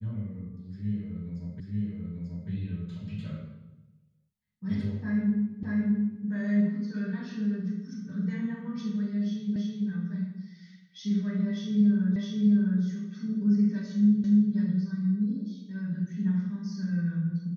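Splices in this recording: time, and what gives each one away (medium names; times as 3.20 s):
1.60 s: repeat of the last 0.89 s
5.63 s: repeat of the last 0.62 s
9.56 s: repeat of the last 0.33 s
12.16 s: repeat of the last 0.66 s
14.24 s: repeat of the last 0.29 s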